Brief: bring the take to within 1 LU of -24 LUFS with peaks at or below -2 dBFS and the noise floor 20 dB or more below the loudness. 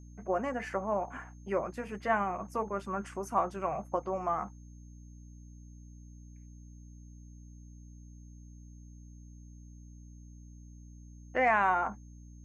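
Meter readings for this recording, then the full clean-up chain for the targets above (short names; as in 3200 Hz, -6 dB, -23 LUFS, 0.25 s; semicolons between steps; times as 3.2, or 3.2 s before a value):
hum 60 Hz; harmonics up to 300 Hz; hum level -48 dBFS; steady tone 6400 Hz; tone level -66 dBFS; loudness -32.5 LUFS; peak -15.0 dBFS; loudness target -24.0 LUFS
-> notches 60/120/180/240/300 Hz; notch 6400 Hz, Q 30; gain +8.5 dB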